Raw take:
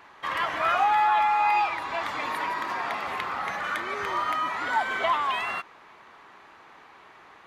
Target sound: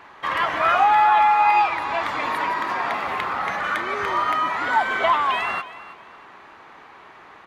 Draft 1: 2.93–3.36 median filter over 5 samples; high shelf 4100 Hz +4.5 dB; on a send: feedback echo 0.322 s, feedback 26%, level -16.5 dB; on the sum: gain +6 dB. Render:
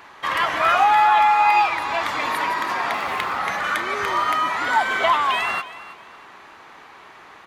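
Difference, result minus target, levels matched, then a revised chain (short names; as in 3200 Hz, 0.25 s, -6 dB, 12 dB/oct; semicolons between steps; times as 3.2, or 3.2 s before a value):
8000 Hz band +7.0 dB
2.93–3.36 median filter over 5 samples; high shelf 4100 Hz -6 dB; on a send: feedback echo 0.322 s, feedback 26%, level -16.5 dB; on the sum: gain +6 dB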